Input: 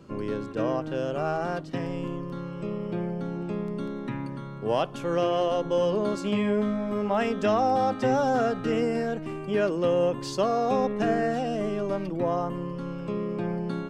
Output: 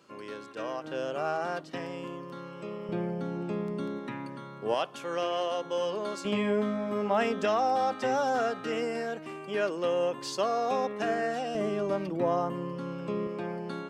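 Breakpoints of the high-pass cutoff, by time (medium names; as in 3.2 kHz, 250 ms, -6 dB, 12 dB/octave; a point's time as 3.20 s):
high-pass 6 dB/octave
1.3 kHz
from 0.84 s 580 Hz
from 2.89 s 170 Hz
from 3.99 s 410 Hz
from 4.74 s 930 Hz
from 6.25 s 270 Hz
from 7.45 s 680 Hz
from 11.55 s 200 Hz
from 13.27 s 480 Hz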